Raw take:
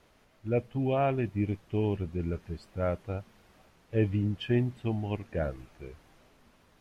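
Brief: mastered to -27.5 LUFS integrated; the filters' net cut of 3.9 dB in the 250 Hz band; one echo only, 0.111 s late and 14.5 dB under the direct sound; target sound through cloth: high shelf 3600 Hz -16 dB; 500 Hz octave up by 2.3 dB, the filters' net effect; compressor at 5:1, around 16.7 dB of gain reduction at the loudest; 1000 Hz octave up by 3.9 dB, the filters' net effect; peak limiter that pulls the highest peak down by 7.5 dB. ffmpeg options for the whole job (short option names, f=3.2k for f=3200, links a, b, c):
-af "equalizer=f=250:t=o:g=-7,equalizer=f=500:t=o:g=3.5,equalizer=f=1k:t=o:g=6.5,acompressor=threshold=-40dB:ratio=5,alimiter=level_in=13dB:limit=-24dB:level=0:latency=1,volume=-13dB,highshelf=f=3.6k:g=-16,aecho=1:1:111:0.188,volume=20.5dB"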